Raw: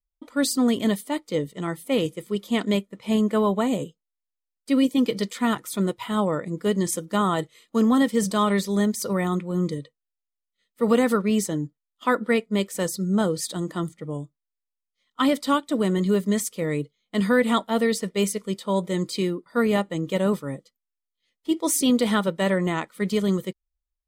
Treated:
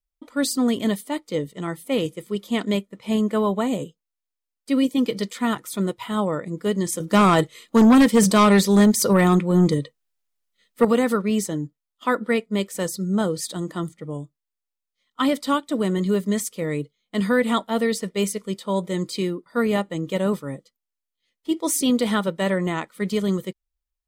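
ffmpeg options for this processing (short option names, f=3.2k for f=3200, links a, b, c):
-filter_complex "[0:a]asettb=1/sr,asplit=3[a][b][c];[a]atrim=end=7.004[d];[b]atrim=start=7:end=10.85,asetpts=PTS-STARTPTS,afade=t=in:d=0.004:c=qsin,afade=t=out:st=3.846:d=0.004:c=qsin,aeval=exprs='0.335*sin(PI/2*1.78*val(0)/0.335)':c=same[e];[c]atrim=start=10.846[f];[d][e]acrossfade=d=0.004:c1=hsin:c2=qsin[g];[g][f]acrossfade=d=0.004:c1=qsin:c2=hsin"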